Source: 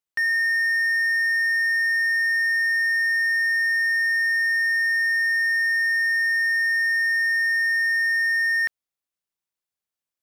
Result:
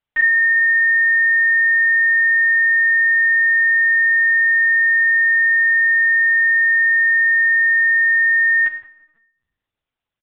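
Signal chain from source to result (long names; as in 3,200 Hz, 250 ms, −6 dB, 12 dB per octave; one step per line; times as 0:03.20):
repeating echo 97 ms, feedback 30%, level −22 dB
convolution reverb RT60 1.0 s, pre-delay 5 ms, DRR 2.5 dB
linear-prediction vocoder at 8 kHz pitch kept
level +7.5 dB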